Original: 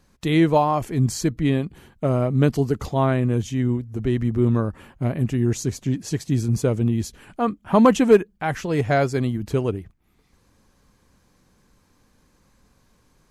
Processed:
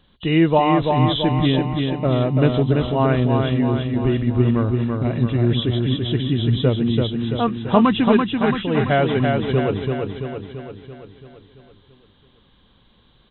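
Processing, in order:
hearing-aid frequency compression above 2,700 Hz 4 to 1
0:07.81–0:08.55: parametric band 540 Hz −13 dB 0.82 octaves
repeating echo 336 ms, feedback 56%, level −4 dB
level +1.5 dB

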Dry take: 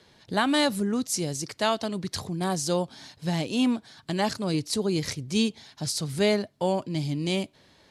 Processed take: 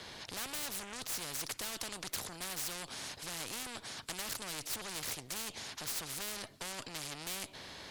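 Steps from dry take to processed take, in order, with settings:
tube saturation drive 30 dB, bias 0.4
every bin compressed towards the loudest bin 4 to 1
level +4.5 dB

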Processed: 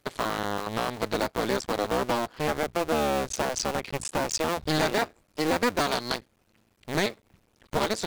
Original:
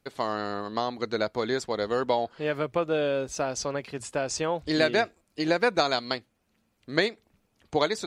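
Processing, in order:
sub-harmonics by changed cycles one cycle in 2, muted
in parallel at +2.5 dB: downward compressor, threshold −34 dBFS, peak gain reduction 14.5 dB
on the sum: gain into a clipping stage and back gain 18.5 dB
level +1 dB

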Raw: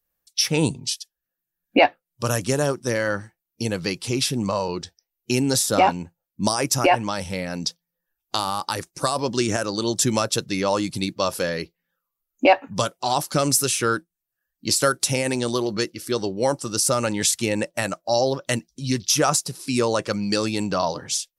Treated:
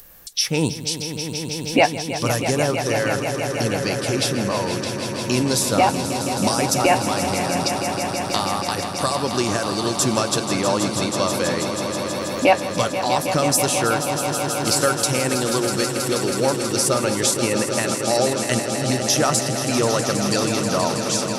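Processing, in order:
upward compression, threshold −22 dBFS
echo that builds up and dies away 161 ms, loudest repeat 5, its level −10.5 dB

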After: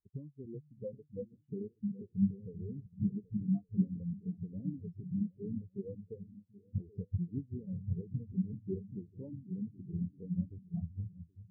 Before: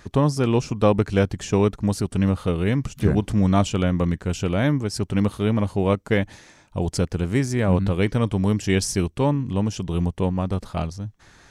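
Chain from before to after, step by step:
parametric band 440 Hz +6.5 dB 2.8 octaves
notch filter 610 Hz, Q 12
downward compressor 12 to 1, threshold −32 dBFS, peak gain reduction 25 dB
echo whose low-pass opens from repeat to repeat 388 ms, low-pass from 200 Hz, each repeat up 2 octaves, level −3 dB
every bin expanded away from the loudest bin 4 to 1
level +1 dB

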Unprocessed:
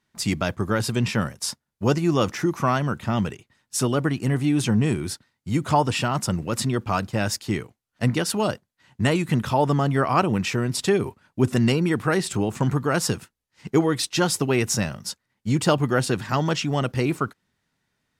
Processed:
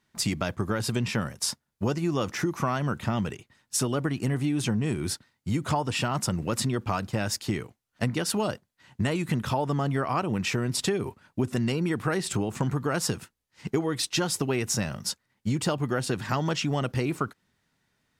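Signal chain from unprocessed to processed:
downward compressor, threshold −25 dBFS, peak gain reduction 11 dB
level +1.5 dB

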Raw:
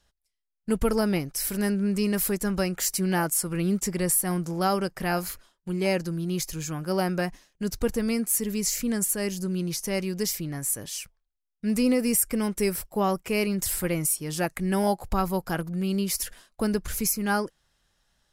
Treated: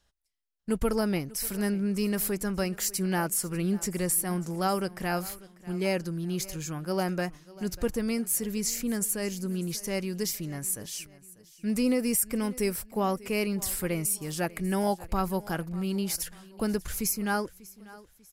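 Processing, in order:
repeating echo 593 ms, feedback 40%, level −20 dB
level −3 dB

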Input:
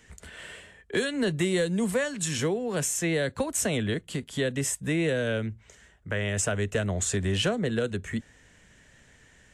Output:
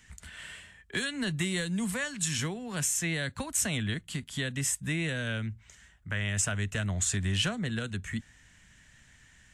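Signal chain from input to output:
parametric band 460 Hz −14.5 dB 1.3 octaves

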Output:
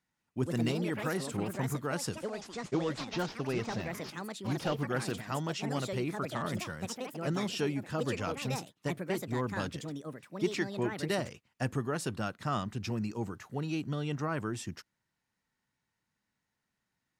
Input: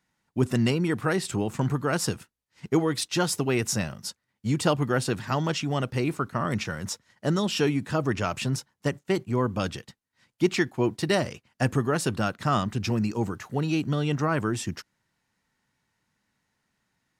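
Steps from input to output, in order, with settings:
0:02.68–0:04.83: variable-slope delta modulation 32 kbit/s
delay with pitch and tempo change per echo 189 ms, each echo +5 semitones, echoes 2, each echo −6 dB
level −8.5 dB

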